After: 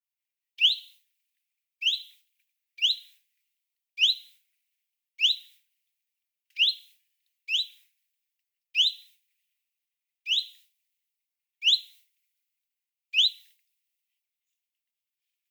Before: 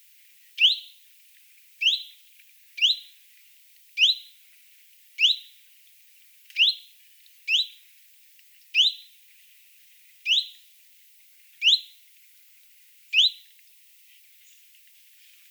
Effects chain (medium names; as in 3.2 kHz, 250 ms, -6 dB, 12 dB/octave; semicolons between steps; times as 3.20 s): expander -45 dBFS; three bands expanded up and down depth 40%; trim -6 dB